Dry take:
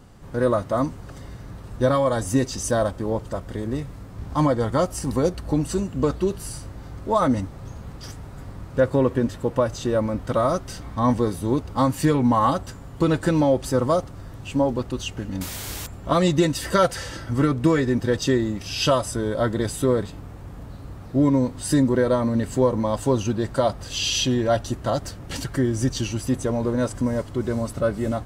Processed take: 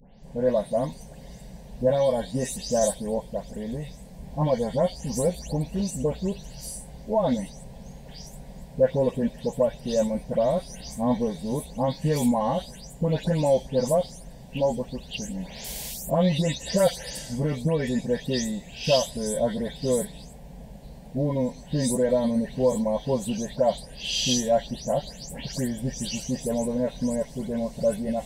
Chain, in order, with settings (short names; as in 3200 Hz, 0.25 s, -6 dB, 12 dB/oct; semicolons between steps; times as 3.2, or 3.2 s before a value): spectral delay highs late, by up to 0.234 s; fixed phaser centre 340 Hz, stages 6